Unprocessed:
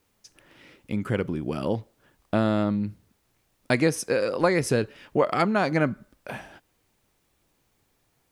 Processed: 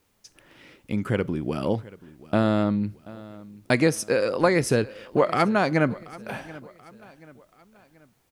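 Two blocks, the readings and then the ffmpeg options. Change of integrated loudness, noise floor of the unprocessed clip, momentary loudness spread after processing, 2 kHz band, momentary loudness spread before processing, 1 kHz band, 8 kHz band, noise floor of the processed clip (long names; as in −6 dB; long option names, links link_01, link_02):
+1.5 dB, −70 dBFS, 17 LU, +1.5 dB, 12 LU, +1.5 dB, +1.5 dB, −66 dBFS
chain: -af "aecho=1:1:732|1464|2196:0.1|0.043|0.0185,volume=1.5dB"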